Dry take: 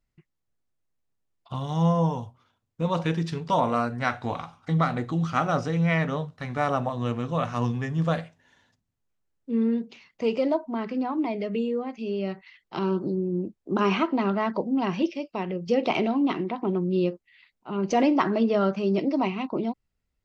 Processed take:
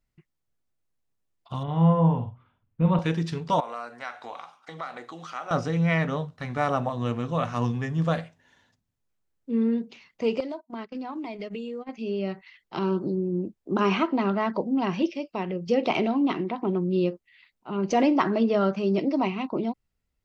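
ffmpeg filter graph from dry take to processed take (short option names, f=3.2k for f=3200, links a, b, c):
-filter_complex "[0:a]asettb=1/sr,asplit=3[a][b][c];[a]atrim=end=1.634[d];[b]atrim=start=1.63:end=2.99,asetpts=PTS-STARTPTS,afade=t=in:d=0.004:c=qsin,afade=t=out:st=1.356:d=0.004:c=qsin,lowpass=f=2.8k:w=0.5412,lowpass=f=2.8k:w=1.3066,asubboost=boost=5.5:cutoff=240,asplit=2[e][f];[f]adelay=49,volume=-7.5dB[g];[e][g]amix=inputs=2:normalize=0,atrim=end_sample=59976[h];[c]atrim=start=2.986[i];[d][h]acrossfade=d=0.004:c1=hsin:c2=qsin[j];[j][i]acrossfade=d=0.004:c1=qsin:c2=hsin,asettb=1/sr,asplit=3[k][l][m];[k]atrim=end=3.604[n];[l]atrim=start=3.6:end=5.51,asetpts=PTS-STARTPTS,afade=t=in:d=0.004:c=qsin,afade=t=out:st=1.906:d=0.004:c=qsin,highpass=560,acompressor=threshold=-37dB:ratio=2:attack=3.2:release=140:knee=1:detection=peak[o];[m]atrim=start=5.506[p];[n][o]acrossfade=d=0.004:c1=hsin:c2=qsin[q];[q][p]acrossfade=d=0.004:c1=qsin:c2=hsin,asettb=1/sr,asplit=3[r][s][t];[r]atrim=end=10.404[u];[s]atrim=start=10.4:end=11.89,asetpts=PTS-STARTPTS,afade=t=in:d=0.004:c=qsin,afade=t=out:st=1.486:d=0.004:c=qsin,agate=range=-31dB:threshold=-31dB:ratio=16:release=100:detection=peak,highshelf=f=2.4k:g=9,acompressor=threshold=-31dB:ratio=6:attack=3.2:release=140:knee=1:detection=peak[v];[t]atrim=start=11.886[w];[u][v]acrossfade=d=0.004:c1=hsin:c2=qsin[x];[x][w]acrossfade=d=0.004:c1=qsin:c2=hsin"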